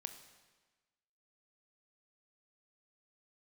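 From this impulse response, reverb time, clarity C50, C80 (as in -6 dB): 1.3 s, 9.5 dB, 11.0 dB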